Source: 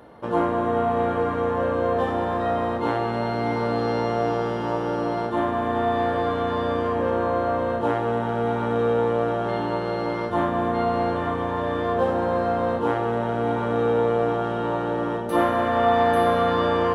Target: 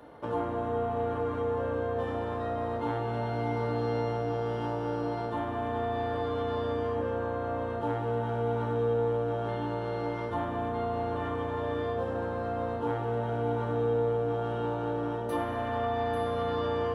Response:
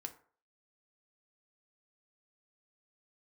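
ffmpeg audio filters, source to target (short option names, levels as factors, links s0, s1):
-filter_complex "[0:a]acrossover=split=200[s0][s1];[s1]acompressor=threshold=0.0355:ratio=3[s2];[s0][s2]amix=inputs=2:normalize=0[s3];[1:a]atrim=start_sample=2205[s4];[s3][s4]afir=irnorm=-1:irlink=0"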